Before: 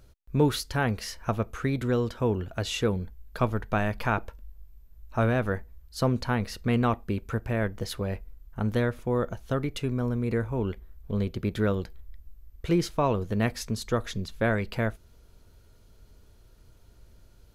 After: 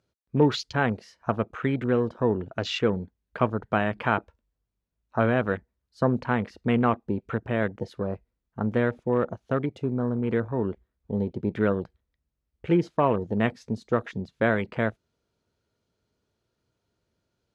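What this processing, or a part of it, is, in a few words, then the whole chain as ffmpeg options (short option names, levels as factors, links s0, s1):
over-cleaned archive recording: -af "highpass=140,lowpass=6500,afwtdn=0.0112,volume=1.41"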